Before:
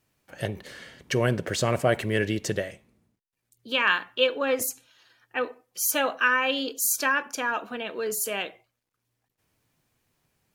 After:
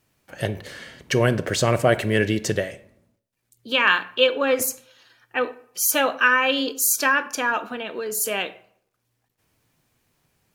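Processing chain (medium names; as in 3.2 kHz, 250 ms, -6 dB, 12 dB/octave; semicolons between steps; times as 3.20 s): 7.61–8.15 s: compression, threshold -31 dBFS, peak gain reduction 5 dB; on a send: reverberation RT60 0.65 s, pre-delay 22 ms, DRR 16.5 dB; on the sum: trim +4.5 dB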